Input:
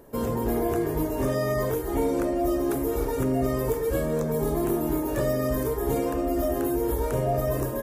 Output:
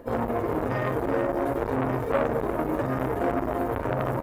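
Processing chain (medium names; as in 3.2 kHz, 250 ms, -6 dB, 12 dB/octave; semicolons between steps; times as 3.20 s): tone controls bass -5 dB, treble -14 dB; in parallel at -1 dB: compressor with a negative ratio -29 dBFS, ratio -0.5; on the sum: companded quantiser 8-bit; plain phase-vocoder stretch 0.54×; delay 382 ms -9 dB; on a send at -1 dB: reverberation, pre-delay 3 ms; on the sum: transformer saturation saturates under 1 kHz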